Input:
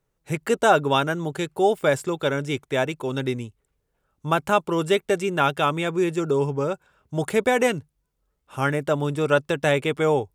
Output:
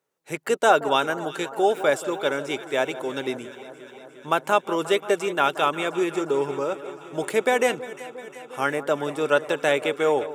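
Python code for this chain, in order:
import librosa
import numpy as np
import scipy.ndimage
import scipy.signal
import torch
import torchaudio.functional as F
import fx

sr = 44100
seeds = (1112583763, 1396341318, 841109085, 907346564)

p1 = scipy.signal.sosfilt(scipy.signal.butter(2, 310.0, 'highpass', fs=sr, output='sos'), x)
y = p1 + fx.echo_alternate(p1, sr, ms=177, hz=1300.0, feedback_pct=83, wet_db=-14.0, dry=0)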